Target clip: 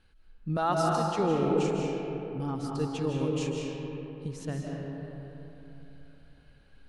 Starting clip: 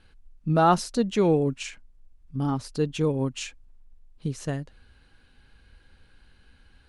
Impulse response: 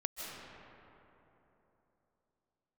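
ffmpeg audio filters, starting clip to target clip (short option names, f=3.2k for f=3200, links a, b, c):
-filter_complex "[0:a]asettb=1/sr,asplit=3[a][b][c];[a]atrim=end=0.574[d];[b]atrim=start=0.57:end=1.19,asetpts=PTS-STARTPTS,afade=t=in:d=0.004:c=qsin,afade=t=out:st=0.616:d=0.004:c=qsin,highpass=f=560:p=1[e];[c]atrim=start=1.186[f];[d][e]acrossfade=d=0.004:c1=hsin:c2=qsin[g];[g][f]acrossfade=d=0.004:c1=qsin:c2=hsin[h];[1:a]atrim=start_sample=2205[i];[h][i]afir=irnorm=-1:irlink=0,volume=-5dB"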